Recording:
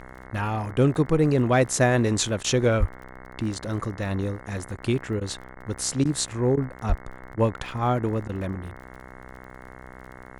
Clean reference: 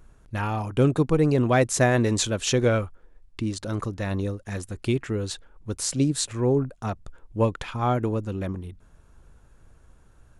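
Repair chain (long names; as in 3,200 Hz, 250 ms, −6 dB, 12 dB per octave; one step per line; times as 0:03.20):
click removal
hum removal 63.7 Hz, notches 34
high-pass at the plosives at 0:02.79/0:06.88
repair the gap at 0:02.43/0:04.77/0:05.20/0:05.55/0:06.04/0:06.56/0:07.36/0:08.28, 11 ms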